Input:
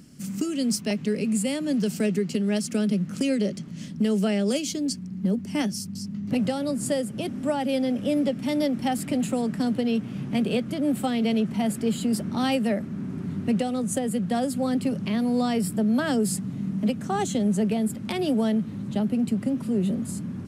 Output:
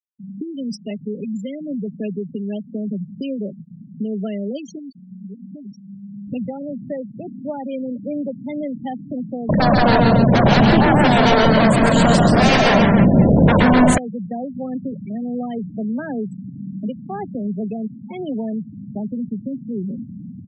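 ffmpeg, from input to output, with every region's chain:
ffmpeg -i in.wav -filter_complex "[0:a]asettb=1/sr,asplit=3[link_01][link_02][link_03];[link_01]atrim=end=4.784[link_04];[link_02]atrim=start=4.78:end=6.27,asetpts=PTS-STARTPTS,afade=type=in:duration=0.004:curve=qsin,afade=type=out:start_time=1.486:duration=0.004:curve=qsin,bandreject=frequency=60:width_type=h:width=6,bandreject=frequency=120:width_type=h:width=6,bandreject=frequency=180:width_type=h:width=6,bandreject=frequency=240:width_type=h:width=6,acompressor=threshold=-29dB:ratio=12:attack=3.2:release=140:knee=1:detection=peak,asplit=2[link_05][link_06];[link_06]adelay=15,volume=-13.5dB[link_07];[link_05][link_07]amix=inputs=2:normalize=0,atrim=end_sample=65709[link_08];[link_03]atrim=start=6.266[link_09];[link_04][link_08]acrossfade=duration=0.004:curve1=hsin:curve2=qsin[link_10];[link_10][link_09]acrossfade=duration=0.004:curve1=qsin:curve2=hsin,asettb=1/sr,asplit=3[link_11][link_12][link_13];[link_11]atrim=end=9.494[link_14];[link_12]atrim=start=9.49:end=13.98,asetpts=PTS-STARTPTS,afade=type=in:duration=0.004:curve=qsin,afade=type=out:start_time=4.486:duration=0.004:curve=qsin,lowshelf=frequency=240:gain=9,aeval=exprs='0.299*sin(PI/2*5.01*val(0)/0.299)':channel_layout=same,aecho=1:1:132|172|273|494|699:0.708|0.501|0.501|0.188|0.112,atrim=end_sample=198009[link_15];[link_13]atrim=start=13.976[link_16];[link_14][link_15]acrossfade=duration=0.004:curve1=hsin:curve2=qsin[link_17];[link_17][link_16]acrossfade=duration=0.004:curve1=qsin:curve2=hsin,adynamicequalizer=threshold=0.00224:dfrequency=1200:dqfactor=3.9:tfrequency=1200:tqfactor=3.9:attack=5:release=100:ratio=0.375:range=4:mode=cutabove:tftype=bell,lowpass=7800,afftfilt=real='re*gte(hypot(re,im),0.0891)':imag='im*gte(hypot(re,im),0.0891)':win_size=1024:overlap=0.75,volume=-1.5dB" out.wav

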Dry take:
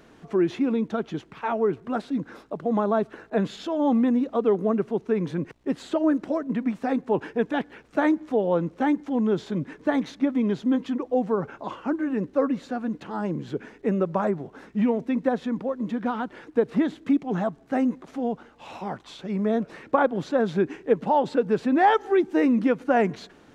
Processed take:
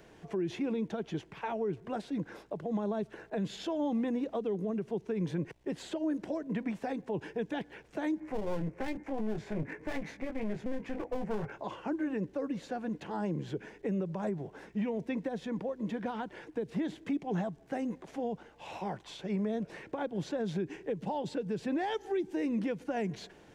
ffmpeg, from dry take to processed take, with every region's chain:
ffmpeg -i in.wav -filter_complex "[0:a]asettb=1/sr,asplit=3[link_01][link_02][link_03];[link_01]atrim=end=8.204[link_04];[link_02]atrim=start=8.2:end=11.52,asetpts=PTS-STARTPTS,afade=type=in:duration=0.004:curve=qsin,afade=type=out:start_time=3.316:duration=0.004:curve=qsin,highshelf=frequency=2700:width_type=q:width=3:gain=-6.5,asplit=2[link_05][link_06];[link_06]adelay=19,volume=-5dB[link_07];[link_05][link_07]amix=inputs=2:normalize=0,atrim=end_sample=146412,aeval=exprs='clip(val(0),-1,0.0282)':channel_layout=same[link_08];[link_03]atrim=start=11.516[link_09];[link_04][link_08]acrossfade=duration=0.004:curve1=hsin:curve2=qsin[link_10];[link_10][link_09]acrossfade=duration=0.004:curve1=qsin:curve2=hsin,equalizer=frequency=250:width_type=o:width=0.33:gain=-10,equalizer=frequency=1250:width_type=o:width=0.33:gain=-9,equalizer=frequency=4000:width_type=o:width=0.33:gain=-3,acrossover=split=310|3000[link_11][link_12][link_13];[link_12]acompressor=threshold=-32dB:ratio=6[link_14];[link_11][link_14][link_13]amix=inputs=3:normalize=0,alimiter=limit=-23.5dB:level=0:latency=1:release=82,volume=-2dB" out.wav

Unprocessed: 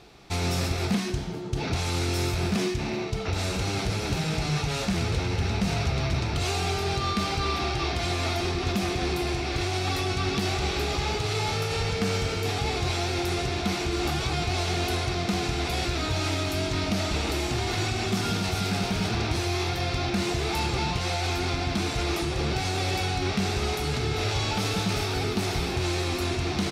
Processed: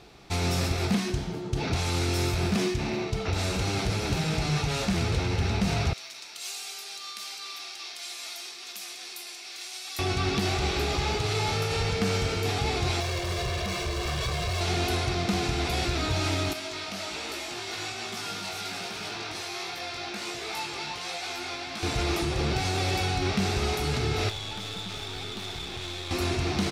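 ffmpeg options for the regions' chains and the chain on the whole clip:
ffmpeg -i in.wav -filter_complex "[0:a]asettb=1/sr,asplit=3[link_01][link_02][link_03];[link_01]atrim=end=5.934[link_04];[link_02]atrim=start=5.93:end=9.99,asetpts=PTS-STARTPTS,afade=type=in:duration=0.004:curve=qsin,afade=type=out:start_time=4.056:duration=0.004:curve=qsin,highpass=240,aderivative[link_05];[link_03]atrim=start=9.986[link_06];[link_04][link_05]acrossfade=duration=0.004:curve1=hsin:curve2=qsin[link_07];[link_07][link_06]acrossfade=duration=0.004:curve1=qsin:curve2=hsin,asettb=1/sr,asplit=3[link_08][link_09][link_10];[link_08]atrim=end=13.004[link_11];[link_09]atrim=start=13:end=14.61,asetpts=PTS-STARTPTS,afade=type=in:duration=0.004:curve=qsin,afade=type=out:start_time=1.606:duration=0.004:curve=qsin,lowpass=8100,asoftclip=type=hard:threshold=-29.5dB,aecho=1:1:1.8:0.81,atrim=end_sample=71001[link_12];[link_10]atrim=start=14.606[link_13];[link_11][link_12]acrossfade=duration=0.004:curve1=hsin:curve2=qsin[link_14];[link_14][link_13]acrossfade=duration=0.004:curve1=qsin:curve2=hsin,asettb=1/sr,asplit=3[link_15][link_16][link_17];[link_15]atrim=end=16.534[link_18];[link_16]atrim=start=16.53:end=21.83,asetpts=PTS-STARTPTS,afade=type=in:duration=0.004:curve=qsin,afade=type=out:start_time=5.296:duration=0.004:curve=qsin,flanger=delay=17.5:depth=2.7:speed=1.3,highpass=frequency=780:poles=1[link_19];[link_17]atrim=start=21.826[link_20];[link_18][link_19]acrossfade=duration=0.004:curve1=hsin:curve2=qsin[link_21];[link_21][link_20]acrossfade=duration=0.004:curve1=qsin:curve2=hsin,asettb=1/sr,asplit=3[link_22][link_23][link_24];[link_22]atrim=end=24.294[link_25];[link_23]atrim=start=24.29:end=26.11,asetpts=PTS-STARTPTS,afade=type=in:duration=0.004:curve=qsin,afade=type=out:start_time=1.816:duration=0.004:curve=qsin,equalizer=frequency=3500:width=7.9:gain=13,acrossover=split=880|5700[link_26][link_27][link_28];[link_26]acompressor=threshold=-36dB:ratio=4[link_29];[link_27]acompressor=threshold=-33dB:ratio=4[link_30];[link_28]acompressor=threshold=-52dB:ratio=4[link_31];[link_29][link_30][link_31]amix=inputs=3:normalize=0,aeval=exprs='(tanh(28.2*val(0)+0.55)-tanh(0.55))/28.2':channel_layout=same[link_32];[link_24]atrim=start=26.106[link_33];[link_25][link_32]acrossfade=duration=0.004:curve1=hsin:curve2=qsin[link_34];[link_34][link_33]acrossfade=duration=0.004:curve1=qsin:curve2=hsin" out.wav

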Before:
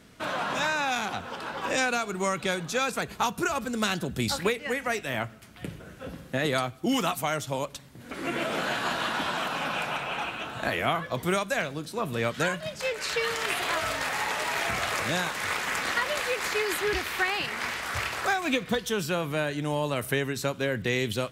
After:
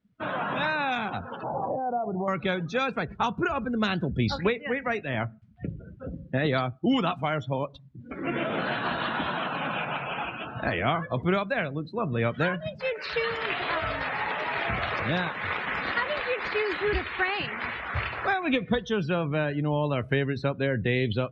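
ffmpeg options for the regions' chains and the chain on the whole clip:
ffmpeg -i in.wav -filter_complex "[0:a]asettb=1/sr,asplit=3[link_01][link_02][link_03];[link_01]atrim=end=1.434[link_04];[link_02]atrim=start=1.43:end=2.28,asetpts=PTS-STARTPTS,afade=type=in:duration=0.004:curve=qsin,afade=type=out:start_time=0.846:duration=0.004:curve=qsin,equalizer=frequency=130:width_type=o:width=0.73:gain=8.5,acompressor=threshold=-30dB:ratio=10:attack=3.2:release=140:knee=1:detection=peak,lowpass=frequency=740:width_type=q:width=4.5[link_05];[link_03]atrim=start=2.276[link_06];[link_04][link_05]acrossfade=duration=0.004:curve1=hsin:curve2=qsin[link_07];[link_07][link_06]acrossfade=duration=0.004:curve1=qsin:curve2=hsin,lowpass=4400,afftdn=noise_reduction=29:noise_floor=-38,lowshelf=frequency=200:gain=7.5" out.wav

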